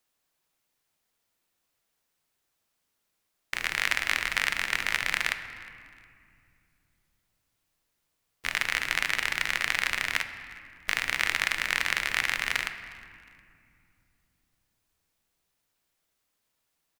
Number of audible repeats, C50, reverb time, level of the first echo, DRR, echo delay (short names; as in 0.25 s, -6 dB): 2, 9.5 dB, 2.4 s, -23.5 dB, 8.5 dB, 0.36 s